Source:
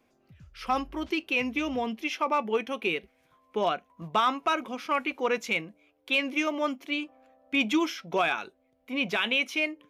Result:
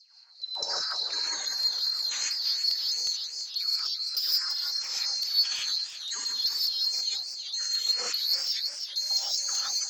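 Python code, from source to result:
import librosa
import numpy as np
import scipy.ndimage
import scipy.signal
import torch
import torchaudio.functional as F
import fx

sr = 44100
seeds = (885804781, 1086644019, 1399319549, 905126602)

p1 = fx.band_swap(x, sr, width_hz=4000)
p2 = fx.filter_lfo_bandpass(p1, sr, shape='saw_down', hz=4.8, low_hz=440.0, high_hz=5400.0, q=6.8)
p3 = p2 + fx.echo_single(p2, sr, ms=324, db=-20.0, dry=0)
p4 = fx.cheby_harmonics(p3, sr, harmonics=(5,), levels_db=(-9,), full_scale_db=-17.0)
p5 = scipy.signal.sosfilt(scipy.signal.butter(2, 100.0, 'highpass', fs=sr, output='sos'), p4)
p6 = fx.low_shelf(p5, sr, hz=130.0, db=6.5)
p7 = fx.rev_gated(p6, sr, seeds[0], gate_ms=200, shape='rising', drr_db=-6.5)
p8 = fx.over_compress(p7, sr, threshold_db=-37.0, ratio=-0.5)
p9 = p7 + F.gain(torch.from_numpy(p8), 1.0).numpy()
p10 = fx.buffer_crackle(p9, sr, first_s=0.55, period_s=0.36, block=64, kind='repeat')
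p11 = fx.echo_warbled(p10, sr, ms=338, feedback_pct=59, rate_hz=2.8, cents=151, wet_db=-11.5)
y = F.gain(torch.from_numpy(p11), -3.5).numpy()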